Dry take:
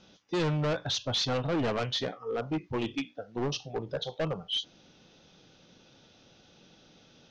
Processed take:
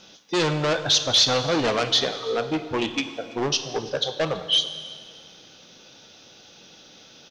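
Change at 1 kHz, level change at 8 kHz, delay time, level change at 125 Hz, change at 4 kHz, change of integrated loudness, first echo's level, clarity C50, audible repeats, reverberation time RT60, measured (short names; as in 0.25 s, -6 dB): +8.5 dB, n/a, 0.331 s, +1.5 dB, +12.0 dB, +9.0 dB, -22.0 dB, 10.5 dB, 1, 1.9 s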